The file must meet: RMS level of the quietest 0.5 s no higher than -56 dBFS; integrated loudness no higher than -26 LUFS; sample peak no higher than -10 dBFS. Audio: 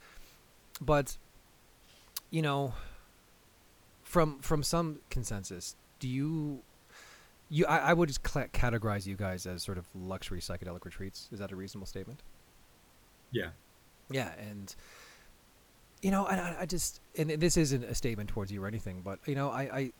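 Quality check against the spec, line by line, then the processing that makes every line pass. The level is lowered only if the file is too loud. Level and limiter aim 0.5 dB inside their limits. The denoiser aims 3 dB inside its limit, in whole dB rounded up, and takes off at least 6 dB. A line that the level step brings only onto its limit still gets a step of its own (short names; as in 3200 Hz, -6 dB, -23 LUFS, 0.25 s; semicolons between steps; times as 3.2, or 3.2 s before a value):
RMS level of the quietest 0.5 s -62 dBFS: OK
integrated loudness -34.5 LUFS: OK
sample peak -13.0 dBFS: OK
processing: none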